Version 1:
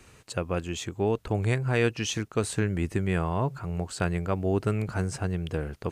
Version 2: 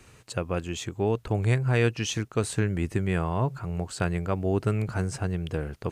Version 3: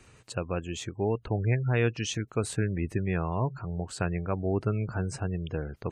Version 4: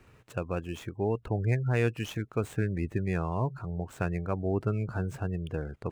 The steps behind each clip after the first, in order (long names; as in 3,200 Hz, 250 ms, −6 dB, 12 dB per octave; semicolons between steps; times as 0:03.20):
parametric band 120 Hz +4.5 dB 0.28 octaves
gate on every frequency bin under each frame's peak −30 dB strong; level −2.5 dB
running median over 9 samples; level −1 dB